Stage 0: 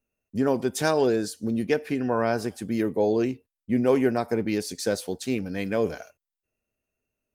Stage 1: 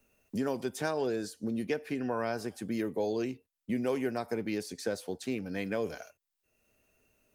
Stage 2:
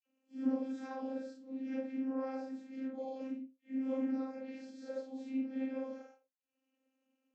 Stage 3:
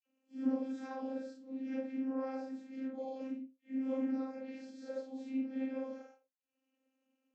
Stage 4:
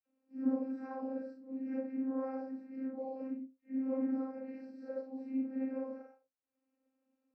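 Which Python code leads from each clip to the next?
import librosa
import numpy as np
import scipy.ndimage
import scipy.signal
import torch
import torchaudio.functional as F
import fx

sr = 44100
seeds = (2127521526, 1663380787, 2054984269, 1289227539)

y1 = fx.low_shelf(x, sr, hz=360.0, db=-3.0)
y1 = fx.band_squash(y1, sr, depth_pct=70)
y1 = y1 * 10.0 ** (-7.5 / 20.0)
y2 = fx.phase_scramble(y1, sr, seeds[0], window_ms=200)
y2 = fx.dispersion(y2, sr, late='lows', ms=51.0, hz=1600.0)
y2 = fx.vocoder(y2, sr, bands=32, carrier='saw', carrier_hz=264.0)
y2 = y2 * 10.0 ** (-4.5 / 20.0)
y3 = y2
y4 = np.convolve(y3, np.full(13, 1.0 / 13))[:len(y3)]
y4 = y4 * 10.0 ** (1.0 / 20.0)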